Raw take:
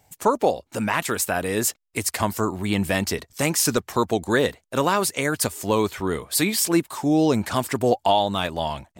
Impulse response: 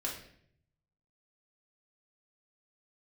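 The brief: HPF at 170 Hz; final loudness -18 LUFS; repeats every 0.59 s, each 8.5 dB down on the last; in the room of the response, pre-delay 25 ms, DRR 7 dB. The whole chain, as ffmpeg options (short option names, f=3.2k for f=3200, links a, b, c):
-filter_complex "[0:a]highpass=170,aecho=1:1:590|1180|1770|2360:0.376|0.143|0.0543|0.0206,asplit=2[a][b];[1:a]atrim=start_sample=2205,adelay=25[c];[b][c]afir=irnorm=-1:irlink=0,volume=-9.5dB[d];[a][d]amix=inputs=2:normalize=0,volume=4dB"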